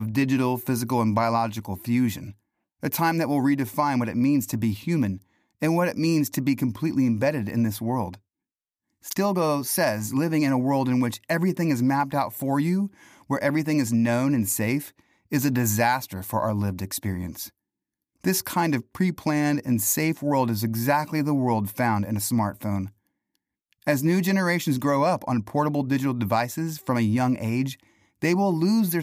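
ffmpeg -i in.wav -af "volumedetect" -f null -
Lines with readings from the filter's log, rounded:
mean_volume: -24.4 dB
max_volume: -9.0 dB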